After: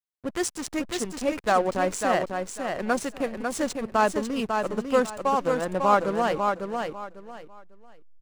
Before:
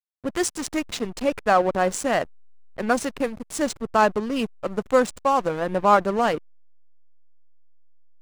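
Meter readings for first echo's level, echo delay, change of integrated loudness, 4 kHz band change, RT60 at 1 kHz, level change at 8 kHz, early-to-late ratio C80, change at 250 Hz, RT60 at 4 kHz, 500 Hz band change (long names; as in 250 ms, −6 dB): −5.0 dB, 548 ms, −3.0 dB, −2.5 dB, no reverb audible, −2.5 dB, no reverb audible, −2.0 dB, no reverb audible, −2.5 dB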